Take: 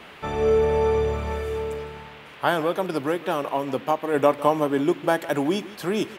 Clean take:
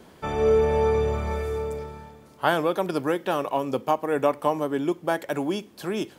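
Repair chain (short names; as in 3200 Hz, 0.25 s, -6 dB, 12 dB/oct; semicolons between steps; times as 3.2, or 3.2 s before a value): noise print and reduce 7 dB; inverse comb 0.156 s -18 dB; gain 0 dB, from 4.14 s -3.5 dB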